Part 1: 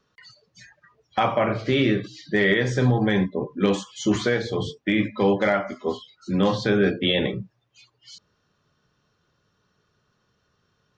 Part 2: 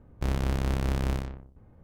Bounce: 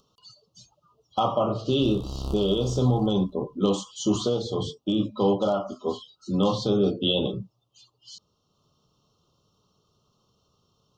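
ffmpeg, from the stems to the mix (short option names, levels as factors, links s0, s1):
-filter_complex "[0:a]highshelf=f=5800:g=5,acompressor=mode=upward:threshold=0.00112:ratio=2.5,volume=0.794,asplit=2[s0][s1];[1:a]adelay=1600,volume=1.26,asplit=2[s2][s3];[s3]volume=0.0841[s4];[s1]apad=whole_len=151350[s5];[s2][s5]sidechaincompress=threshold=0.0316:ratio=10:attack=5.2:release=598[s6];[s4]aecho=0:1:298|596|894|1192:1|0.23|0.0529|0.0122[s7];[s0][s6][s7]amix=inputs=3:normalize=0,asuperstop=centerf=1900:order=12:qfactor=1.3"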